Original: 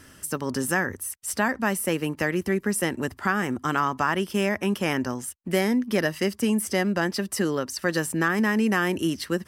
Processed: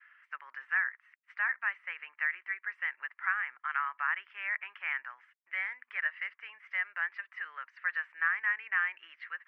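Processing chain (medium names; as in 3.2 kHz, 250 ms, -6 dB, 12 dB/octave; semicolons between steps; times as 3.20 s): Chebyshev low-pass 2.2 kHz, order 4; expander -52 dBFS; high-pass 1.5 kHz 24 dB/octave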